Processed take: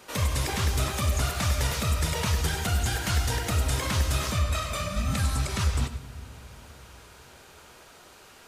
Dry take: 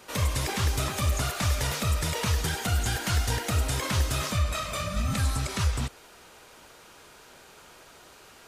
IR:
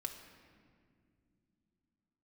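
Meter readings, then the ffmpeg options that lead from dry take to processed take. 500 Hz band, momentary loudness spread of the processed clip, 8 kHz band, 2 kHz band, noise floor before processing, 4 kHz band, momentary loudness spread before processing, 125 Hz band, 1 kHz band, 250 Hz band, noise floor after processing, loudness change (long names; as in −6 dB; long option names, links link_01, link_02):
+0.5 dB, 6 LU, 0.0 dB, +0.5 dB, −52 dBFS, +0.5 dB, 2 LU, +1.0 dB, +0.5 dB, +0.5 dB, −52 dBFS, +0.5 dB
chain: -filter_complex "[0:a]asplit=2[link_01][link_02];[link_02]equalizer=frequency=95:width_type=o:width=2.5:gain=5.5[link_03];[1:a]atrim=start_sample=2205,adelay=96[link_04];[link_03][link_04]afir=irnorm=-1:irlink=0,volume=-10.5dB[link_05];[link_01][link_05]amix=inputs=2:normalize=0"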